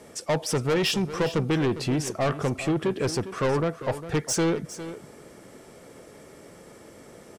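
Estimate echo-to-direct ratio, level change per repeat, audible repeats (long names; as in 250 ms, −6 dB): −13.0 dB, repeats not evenly spaced, 1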